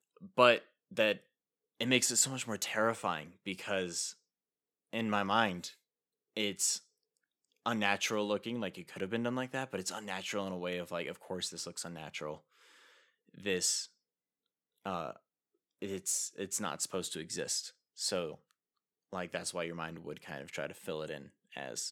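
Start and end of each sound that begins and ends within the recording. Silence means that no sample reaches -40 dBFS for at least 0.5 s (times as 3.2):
1.81–4.11
4.93–5.69
6.37–6.78
7.66–12.35
13.43–13.85
14.85–15.11
15.82–18.34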